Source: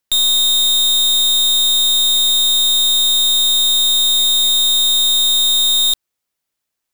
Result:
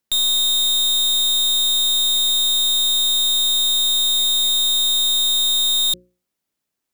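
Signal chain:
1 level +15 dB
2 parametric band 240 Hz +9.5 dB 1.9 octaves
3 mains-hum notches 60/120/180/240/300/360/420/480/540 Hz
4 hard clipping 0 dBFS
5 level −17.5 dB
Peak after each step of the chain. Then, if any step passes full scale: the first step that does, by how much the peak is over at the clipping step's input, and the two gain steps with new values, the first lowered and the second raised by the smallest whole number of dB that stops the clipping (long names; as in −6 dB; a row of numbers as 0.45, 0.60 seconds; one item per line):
+1.5, +4.0, +3.5, 0.0, −17.5 dBFS
step 1, 3.5 dB
step 1 +11 dB, step 5 −13.5 dB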